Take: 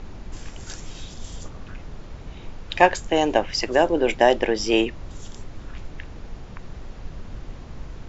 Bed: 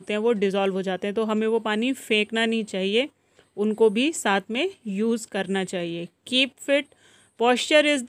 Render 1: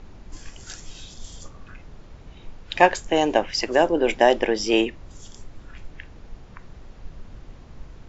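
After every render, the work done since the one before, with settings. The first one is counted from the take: noise print and reduce 6 dB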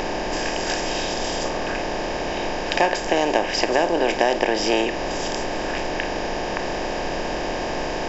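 spectral levelling over time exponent 0.4; compression 2:1, threshold -19 dBFS, peak gain reduction 7.5 dB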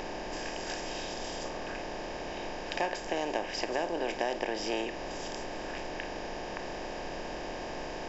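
trim -12.5 dB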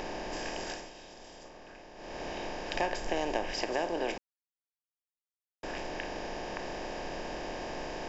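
0.62–2.24 s: dip -12.5 dB, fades 0.29 s; 2.74–3.53 s: bass shelf 79 Hz +10.5 dB; 4.18–5.63 s: mute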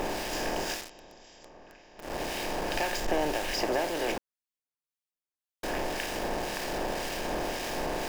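in parallel at -5 dB: companded quantiser 2-bit; on the sum: harmonic tremolo 1.9 Hz, depth 50%, crossover 1.6 kHz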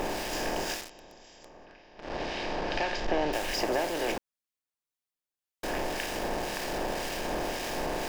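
1.65–3.33 s: low-pass 5.2 kHz 24 dB/octave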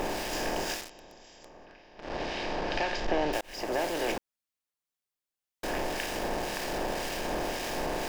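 3.41–3.83 s: fade in

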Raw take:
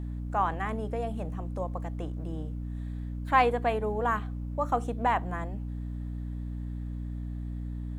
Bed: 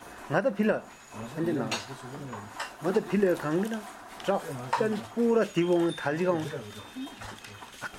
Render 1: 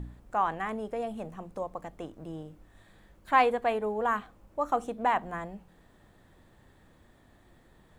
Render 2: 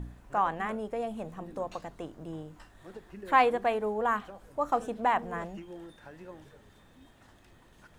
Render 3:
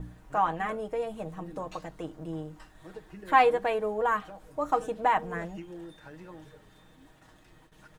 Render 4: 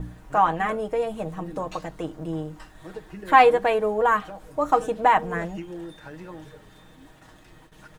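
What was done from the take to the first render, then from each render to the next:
de-hum 60 Hz, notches 5
add bed -20.5 dB
gate with hold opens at -49 dBFS; comb 6.4 ms, depth 61%
trim +6.5 dB; peak limiter -2 dBFS, peak gain reduction 1 dB

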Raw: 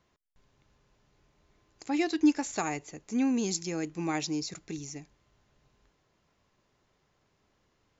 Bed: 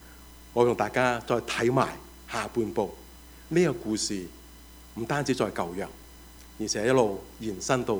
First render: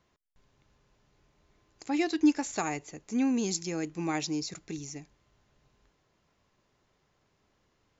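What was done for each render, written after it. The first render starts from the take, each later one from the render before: no audible change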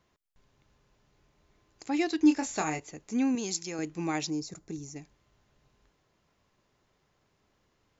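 2.23–2.80 s: doubling 26 ms -6 dB; 3.35–3.79 s: bass shelf 320 Hz -8.5 dB; 4.30–4.96 s: peaking EQ 2.8 kHz -11.5 dB 1.8 oct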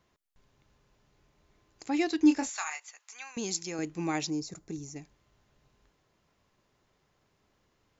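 2.49–3.37 s: high-pass 1 kHz 24 dB/octave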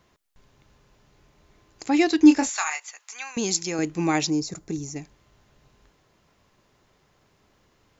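trim +8.5 dB

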